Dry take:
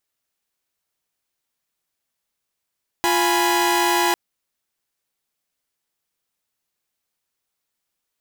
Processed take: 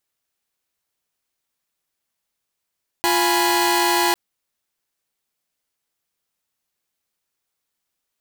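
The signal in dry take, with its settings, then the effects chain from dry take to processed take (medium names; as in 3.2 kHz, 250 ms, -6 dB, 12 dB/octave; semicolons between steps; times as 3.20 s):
chord F4/G#5/B5 saw, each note -18.5 dBFS 1.10 s
block-companded coder 3-bit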